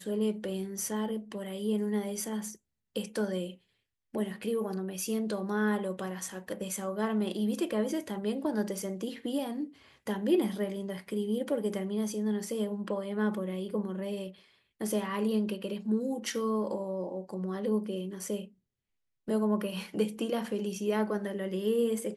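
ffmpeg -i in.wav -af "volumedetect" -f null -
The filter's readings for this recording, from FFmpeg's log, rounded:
mean_volume: -32.6 dB
max_volume: -15.6 dB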